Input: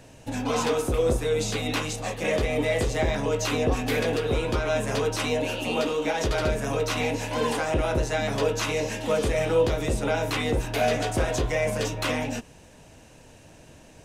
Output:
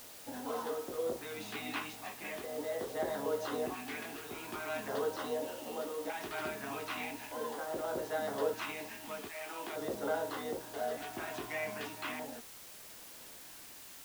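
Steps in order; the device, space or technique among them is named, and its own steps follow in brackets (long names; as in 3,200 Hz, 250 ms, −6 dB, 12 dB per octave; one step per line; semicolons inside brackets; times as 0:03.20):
0:09.28–0:09.74: high-pass filter 770 Hz → 260 Hz 12 dB per octave
shortwave radio (band-pass filter 310–2,800 Hz; amplitude tremolo 0.6 Hz, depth 46%; auto-filter notch square 0.41 Hz 510–2,400 Hz; white noise bed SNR 12 dB)
level −7 dB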